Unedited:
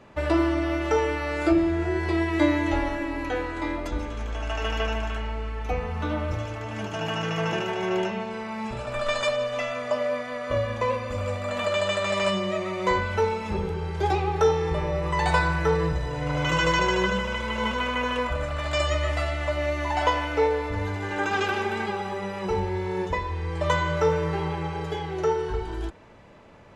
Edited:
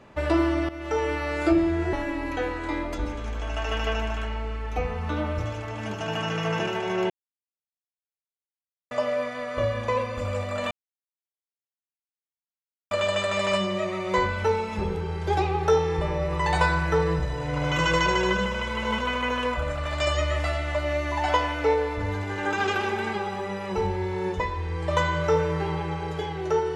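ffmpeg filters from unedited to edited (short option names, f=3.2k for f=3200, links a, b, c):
-filter_complex "[0:a]asplit=6[a][b][c][d][e][f];[a]atrim=end=0.69,asetpts=PTS-STARTPTS,afade=t=out:st=0.686:d=0.004:c=hsin:silence=0.177828[g];[b]atrim=start=0.69:end=1.932,asetpts=PTS-STARTPTS,afade=t=in:d=0.44:silence=0.177828[h];[c]atrim=start=2.858:end=8.03,asetpts=PTS-STARTPTS,afade=t=out:st=5.168:d=0.004:c=hsin[i];[d]atrim=start=8.03:end=9.84,asetpts=PTS-STARTPTS,volume=0[j];[e]atrim=start=9.84:end=11.64,asetpts=PTS-STARTPTS,afade=t=in:d=0.004:c=hsin,afade=t=out:st=1.796:d=0.004:c=hsin,apad=pad_dur=2.2[k];[f]atrim=start=11.64,asetpts=PTS-STARTPTS,afade=t=in:d=0.004:c=hsin[l];[g][h]concat=n=2:v=0:a=1[m];[i][j][k][l]concat=n=4:v=0:a=1[n];[m][n]acrossfade=d=0.004:c1=hsin:c2=hsin"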